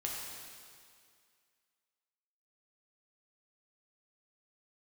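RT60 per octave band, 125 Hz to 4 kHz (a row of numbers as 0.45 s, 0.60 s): 1.9 s, 2.1 s, 2.1 s, 2.2 s, 2.2 s, 2.1 s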